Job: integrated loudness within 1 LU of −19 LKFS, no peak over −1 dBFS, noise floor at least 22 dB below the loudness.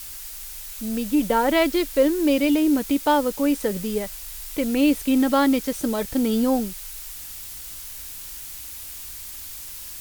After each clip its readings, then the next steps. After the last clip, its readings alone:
background noise floor −37 dBFS; target noise floor −44 dBFS; integrated loudness −21.5 LKFS; sample peak −7.5 dBFS; target loudness −19.0 LKFS
→ noise reduction from a noise print 7 dB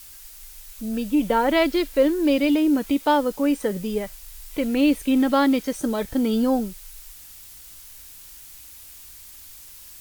background noise floor −44 dBFS; integrated loudness −22.0 LKFS; sample peak −8.0 dBFS; target loudness −19.0 LKFS
→ level +3 dB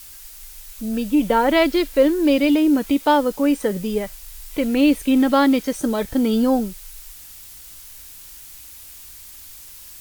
integrated loudness −19.0 LKFS; sample peak −5.0 dBFS; background noise floor −41 dBFS

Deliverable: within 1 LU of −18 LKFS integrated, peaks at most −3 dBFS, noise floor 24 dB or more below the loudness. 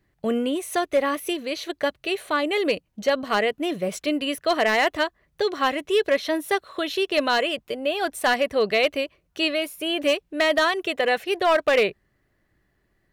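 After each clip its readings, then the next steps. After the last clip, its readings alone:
share of clipped samples 0.5%; peaks flattened at −13.0 dBFS; integrated loudness −23.5 LKFS; sample peak −13.0 dBFS; target loudness −18.0 LKFS
→ clipped peaks rebuilt −13 dBFS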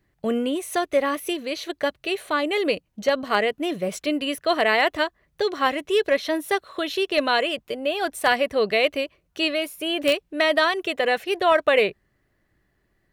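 share of clipped samples 0.0%; integrated loudness −23.0 LKFS; sample peak −4.0 dBFS; target loudness −18.0 LKFS
→ level +5 dB
brickwall limiter −3 dBFS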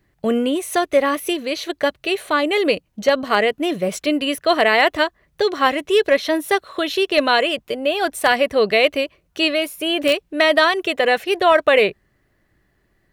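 integrated loudness −18.5 LKFS; sample peak −3.0 dBFS; background noise floor −65 dBFS

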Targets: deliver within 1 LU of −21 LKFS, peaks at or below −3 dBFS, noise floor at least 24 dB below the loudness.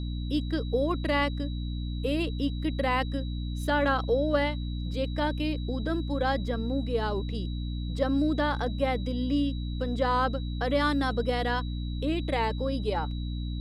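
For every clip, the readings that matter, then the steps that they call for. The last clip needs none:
mains hum 60 Hz; hum harmonics up to 300 Hz; level of the hum −30 dBFS; interfering tone 3,900 Hz; level of the tone −47 dBFS; integrated loudness −29.0 LKFS; sample peak −12.5 dBFS; target loudness −21.0 LKFS
→ hum removal 60 Hz, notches 5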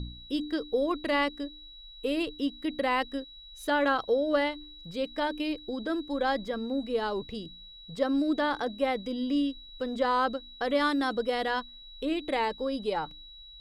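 mains hum none found; interfering tone 3,900 Hz; level of the tone −47 dBFS
→ notch filter 3,900 Hz, Q 30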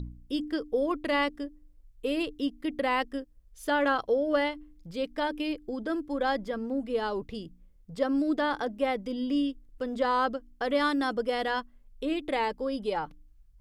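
interfering tone none found; integrated loudness −30.0 LKFS; sample peak −14.5 dBFS; target loudness −21.0 LKFS
→ level +9 dB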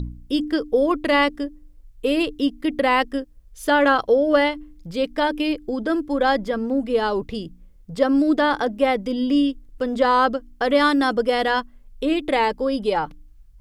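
integrated loudness −21.0 LKFS; sample peak −5.0 dBFS; background noise floor −49 dBFS

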